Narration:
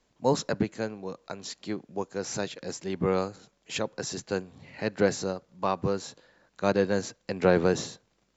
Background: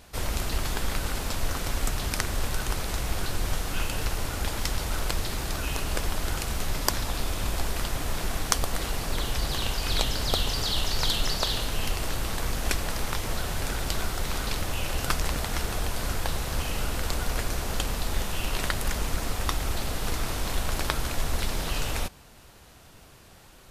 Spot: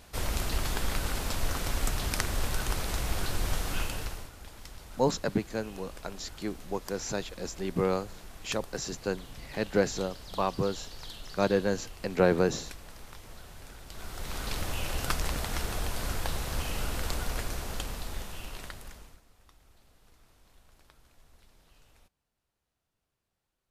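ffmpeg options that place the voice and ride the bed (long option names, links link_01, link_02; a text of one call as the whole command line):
ffmpeg -i stem1.wav -i stem2.wav -filter_complex "[0:a]adelay=4750,volume=-1.5dB[link_01];[1:a]volume=12.5dB,afade=type=out:start_time=3.73:duration=0.58:silence=0.158489,afade=type=in:start_time=13.89:duration=0.73:silence=0.188365,afade=type=out:start_time=17.07:duration=2.15:silence=0.0354813[link_02];[link_01][link_02]amix=inputs=2:normalize=0" out.wav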